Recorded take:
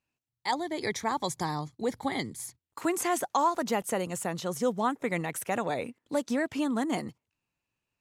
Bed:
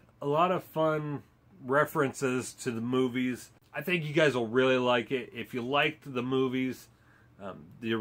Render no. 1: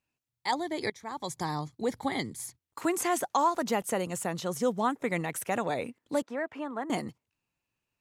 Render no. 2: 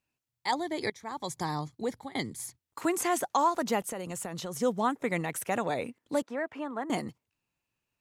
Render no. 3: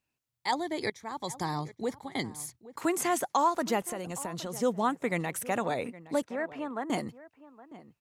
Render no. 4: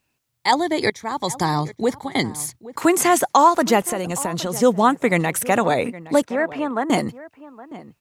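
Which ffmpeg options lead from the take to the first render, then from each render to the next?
-filter_complex "[0:a]asettb=1/sr,asplit=3[a][b][c];[a]atrim=end=6.224[d];[b]atrim=start=6.22:end=6.9,asetpts=PTS-STARTPTS,afade=t=in:d=0.004:c=qsin,afade=t=out:st=0.676:d=0.004:c=qsin,acrossover=split=410 2200:gain=0.178 1 0.0891[e][f][g];[e][f][g]amix=inputs=3:normalize=0[h];[c]atrim=start=6.896[i];[d][h]acrossfade=d=0.004:c1=hsin:c2=qsin[j];[j][i]acrossfade=d=0.004:c1=qsin:c2=hsin,asplit=2[k][l];[k]atrim=end=0.9,asetpts=PTS-STARTPTS,afade=t=out:st=0.896:d=0.004:c=hsin:silence=0.0794328[m];[l]atrim=start=0.9,asetpts=PTS-STARTPTS,afade=t=in:d=0.65:silence=0.0794328[n];[m][n]concat=n=2:v=0:a=1"
-filter_complex "[0:a]asettb=1/sr,asplit=3[a][b][c];[a]atrim=end=3.884[d];[b]atrim=start=3.88:end=4.55,asetpts=PTS-STARTPTS,afade=t=in:d=0.004:c=qsin,afade=t=out:st=0.666:d=0.004:c=qsin,acompressor=threshold=-32dB:ratio=10:attack=3.2:release=140:knee=1:detection=peak[e];[c]atrim=start=4.546[f];[d][e]acrossfade=d=0.004:c1=hsin:c2=qsin[g];[g][f]acrossfade=d=0.004:c1=qsin:c2=hsin,asplit=2[h][i];[h]atrim=end=2.15,asetpts=PTS-STARTPTS,afade=t=out:st=1.63:d=0.52:c=qsin:silence=0.0749894[j];[i]atrim=start=2.15,asetpts=PTS-STARTPTS,afade=t=in:d=0.004:c=hsin:silence=0.0749894[k];[j][k]concat=n=2:v=0:a=1"
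-filter_complex "[0:a]asplit=2[a][b];[b]adelay=816.3,volume=-17dB,highshelf=f=4k:g=-18.4[c];[a][c]amix=inputs=2:normalize=0"
-af "volume=12dB"

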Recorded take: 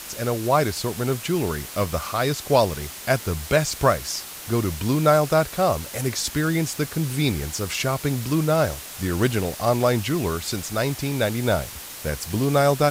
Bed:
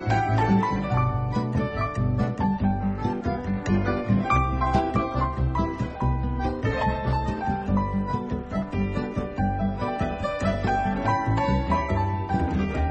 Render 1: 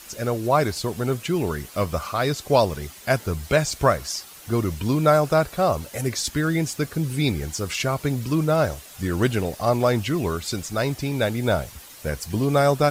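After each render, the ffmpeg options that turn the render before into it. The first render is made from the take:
-af "afftdn=nr=9:nf=-38"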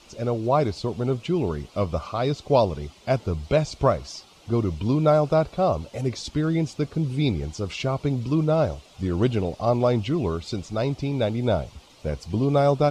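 -af "lowpass=3.7k,equalizer=f=1.7k:t=o:w=0.71:g=-13.5"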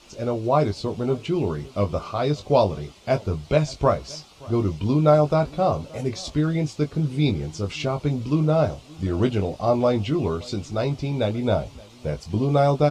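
-filter_complex "[0:a]asplit=2[a][b];[b]adelay=20,volume=-6.5dB[c];[a][c]amix=inputs=2:normalize=0,aecho=1:1:573:0.0668"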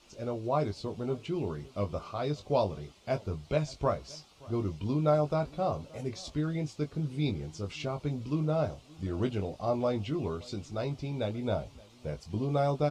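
-af "volume=-9.5dB"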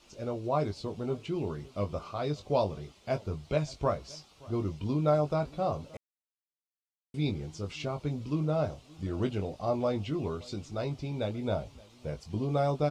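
-filter_complex "[0:a]asplit=3[a][b][c];[a]atrim=end=5.97,asetpts=PTS-STARTPTS,afade=t=out:st=5.966:d=0.004:c=hsin[d];[b]atrim=start=5.97:end=7.14,asetpts=PTS-STARTPTS,volume=0[e];[c]atrim=start=7.14,asetpts=PTS-STARTPTS,afade=t=in:d=0.004:c=hsin[f];[d][e][f]concat=n=3:v=0:a=1"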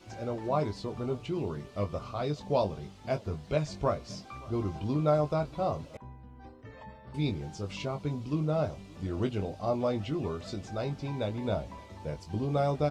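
-filter_complex "[1:a]volume=-23.5dB[a];[0:a][a]amix=inputs=2:normalize=0"

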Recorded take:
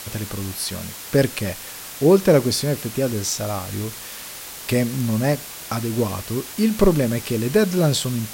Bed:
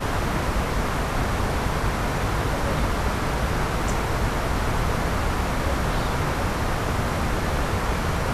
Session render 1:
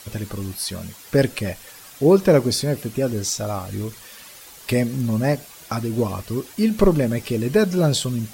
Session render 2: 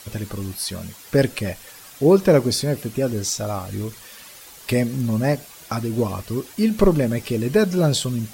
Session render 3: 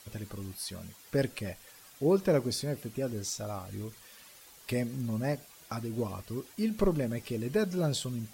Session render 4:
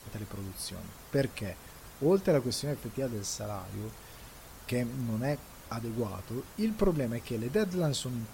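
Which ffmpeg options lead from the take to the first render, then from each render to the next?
-af "afftdn=nr=10:nf=-36"
-af anull
-af "volume=-11.5dB"
-filter_complex "[1:a]volume=-27.5dB[a];[0:a][a]amix=inputs=2:normalize=0"

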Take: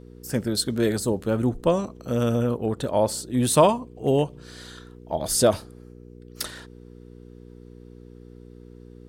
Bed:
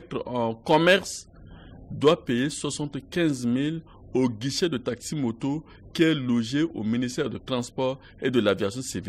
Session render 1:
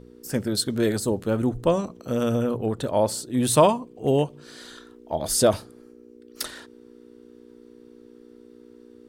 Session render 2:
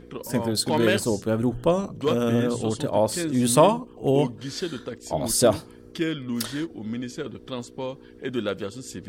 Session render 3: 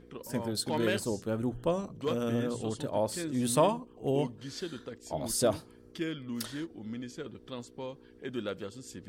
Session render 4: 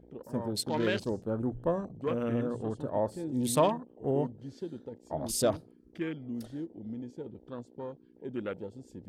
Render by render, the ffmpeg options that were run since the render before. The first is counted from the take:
-af "bandreject=f=60:t=h:w=4,bandreject=f=120:t=h:w=4,bandreject=f=180:t=h:w=4"
-filter_complex "[1:a]volume=-5.5dB[a];[0:a][a]amix=inputs=2:normalize=0"
-af "volume=-8.5dB"
-af "afwtdn=0.00708"

